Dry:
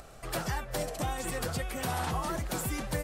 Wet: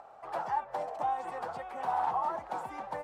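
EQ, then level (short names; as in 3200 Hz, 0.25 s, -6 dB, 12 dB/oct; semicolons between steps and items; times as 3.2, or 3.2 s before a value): band-pass 860 Hz, Q 4.4; +9.0 dB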